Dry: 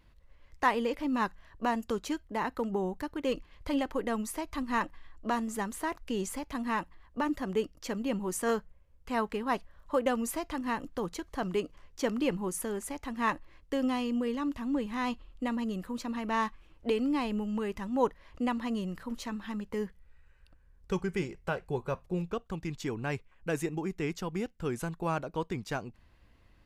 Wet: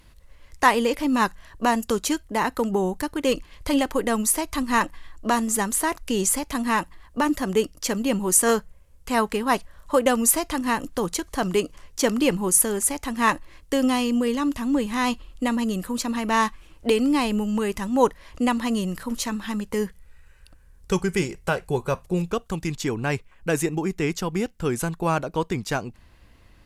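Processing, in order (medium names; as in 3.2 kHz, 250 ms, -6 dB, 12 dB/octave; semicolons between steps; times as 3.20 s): peaking EQ 10 kHz +12 dB 1.7 oct, from 22.75 s +6 dB; trim +8.5 dB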